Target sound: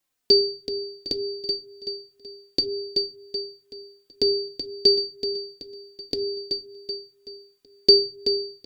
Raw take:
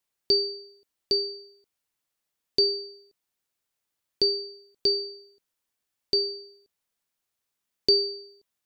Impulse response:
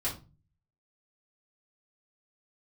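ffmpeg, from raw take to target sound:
-filter_complex "[0:a]equalizer=f=260:w=3.9:g=5.5,aecho=1:1:379|758|1137|1516|1895:0.422|0.186|0.0816|0.0359|0.0158,asplit=2[a][b];[1:a]atrim=start_sample=2205[c];[b][c]afir=irnorm=-1:irlink=0,volume=-15.5dB[d];[a][d]amix=inputs=2:normalize=0,asplit=2[e][f];[f]adelay=3.2,afreqshift=-2[g];[e][g]amix=inputs=2:normalize=1,volume=6dB"

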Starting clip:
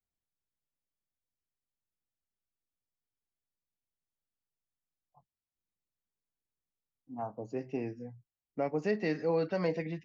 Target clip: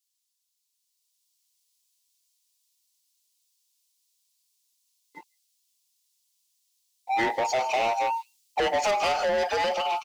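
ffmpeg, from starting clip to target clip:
-filter_complex "[0:a]afftfilt=real='real(if(between(b,1,1008),(2*floor((b-1)/48)+1)*48-b,b),0)':imag='imag(if(between(b,1,1008),(2*floor((b-1)/48)+1)*48-b,b),0)*if(between(b,1,1008),-1,1)':win_size=2048:overlap=0.75,highpass=98,bass=f=250:g=-11,treble=f=4k:g=8,acrossover=split=440[a][b];[b]acompressor=threshold=-37dB:ratio=4[c];[a][c]amix=inputs=2:normalize=0,asplit=2[d][e];[e]alimiter=level_in=9dB:limit=-24dB:level=0:latency=1:release=61,volume=-9dB,volume=0.5dB[f];[d][f]amix=inputs=2:normalize=0,dynaudnorm=f=240:g=9:m=7dB,asplit=2[g][h];[h]highpass=f=720:p=1,volume=22dB,asoftclip=type=tanh:threshold=-15.5dB[i];[g][i]amix=inputs=2:normalize=0,lowpass=f=2.9k:p=1,volume=-6dB,acrossover=split=3200[j][k];[j]aeval=exprs='sgn(val(0))*max(abs(val(0))-0.00211,0)':c=same[l];[k]aecho=1:1:159:0.188[m];[l][m]amix=inputs=2:normalize=0,adynamicequalizer=threshold=0.0112:dfrequency=1500:dqfactor=0.7:tfrequency=1500:tqfactor=0.7:attack=5:release=100:ratio=0.375:range=3:mode=boostabove:tftype=highshelf,volume=-2.5dB"

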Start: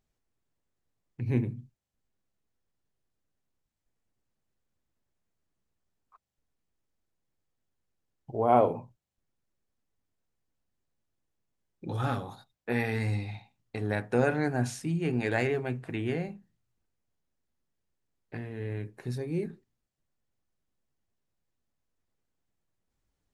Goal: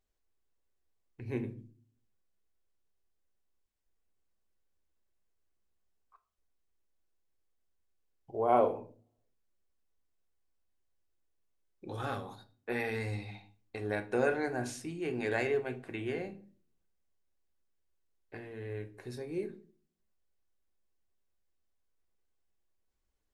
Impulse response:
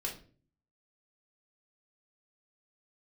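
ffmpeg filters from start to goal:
-filter_complex "[0:a]equalizer=f=140:t=o:w=0.73:g=-11.5,asplit=2[a][b];[1:a]atrim=start_sample=2205[c];[b][c]afir=irnorm=-1:irlink=0,volume=-5dB[d];[a][d]amix=inputs=2:normalize=0,volume=-6.5dB"

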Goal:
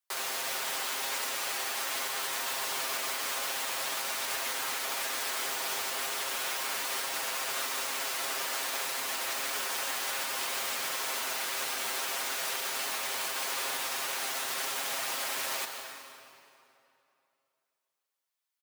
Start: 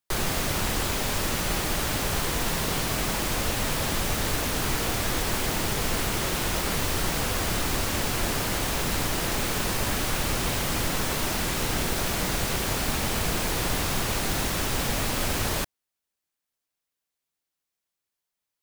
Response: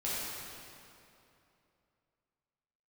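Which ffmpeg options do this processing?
-filter_complex "[0:a]highpass=730,aecho=1:1:7.5:0.7,alimiter=limit=-20.5dB:level=0:latency=1:release=84,asplit=2[a][b];[1:a]atrim=start_sample=2205,adelay=133[c];[b][c]afir=irnorm=-1:irlink=0,volume=-11dB[d];[a][d]amix=inputs=2:normalize=0,volume=-4dB"

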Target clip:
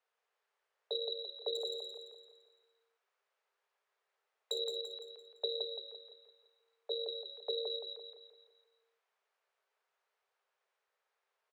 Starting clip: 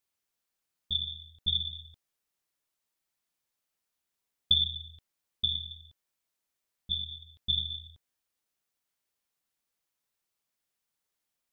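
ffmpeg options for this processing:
-filter_complex "[0:a]lowpass=1.2k,acompressor=threshold=-44dB:ratio=5,crystalizer=i=4:c=0,asettb=1/sr,asplit=3[a][b][c];[a]atrim=end=1.554[d];[b]atrim=start=1.55:end=4.59,asetpts=PTS-STARTPTS,afade=t=in:d=0.004:c=qsin,afade=t=out:st=3.036:d=0.004:c=qsin,aeval=exprs='clip(val(0),-1,0.00596)':c=same[e];[c]atrim=start=4.586[f];[d][e]acrossfade=d=0.004:c1=hsin:c2=qsin[g];[g][f]acrossfade=d=0.004:c1=qsin:c2=hsin,afreqshift=380,aecho=1:1:170|340|510|680|850|1020:0.631|0.29|0.134|0.0614|0.0283|0.013,volume=7.5dB"

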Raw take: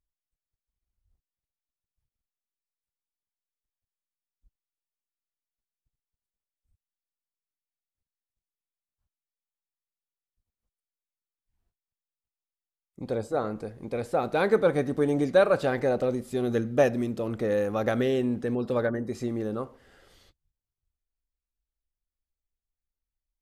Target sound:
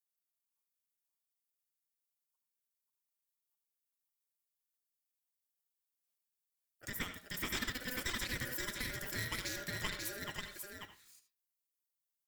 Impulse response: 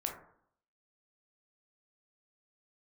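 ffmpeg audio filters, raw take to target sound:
-filter_complex "[0:a]aderivative,aeval=exprs='0.0531*(cos(1*acos(clip(val(0)/0.0531,-1,1)))-cos(1*PI/2))+0.00335*(cos(4*acos(clip(val(0)/0.0531,-1,1)))-cos(4*PI/2))+0.00376*(cos(5*acos(clip(val(0)/0.0531,-1,1)))-cos(5*PI/2))+0.00596*(cos(7*acos(clip(val(0)/0.0531,-1,1)))-cos(7*PI/2))':c=same,acompressor=threshold=-42dB:ratio=6,alimiter=level_in=13.5dB:limit=-24dB:level=0:latency=1:release=393,volume=-13.5dB,aeval=exprs='val(0)*sin(2*PI*580*n/s)':c=same,atempo=1.1,aecho=1:1:936:0.631,asplit=2[a][b];[1:a]atrim=start_sample=2205,asetrate=66150,aresample=44100,adelay=126[c];[b][c]afir=irnorm=-1:irlink=0,volume=-8dB[d];[a][d]amix=inputs=2:normalize=0,asetrate=76440,aresample=44100,volume=16.5dB"

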